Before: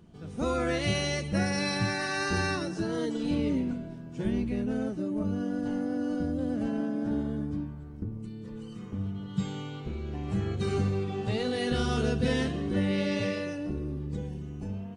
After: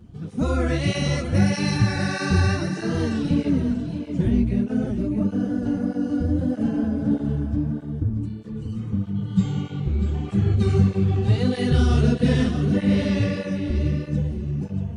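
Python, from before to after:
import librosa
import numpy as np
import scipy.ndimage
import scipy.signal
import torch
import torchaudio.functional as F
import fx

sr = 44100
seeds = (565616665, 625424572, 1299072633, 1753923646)

y = fx.bass_treble(x, sr, bass_db=10, treble_db=0)
y = fx.echo_feedback(y, sr, ms=634, feedback_pct=15, wet_db=-9)
y = fx.flanger_cancel(y, sr, hz=1.6, depth_ms=7.4)
y = y * librosa.db_to_amplitude(5.0)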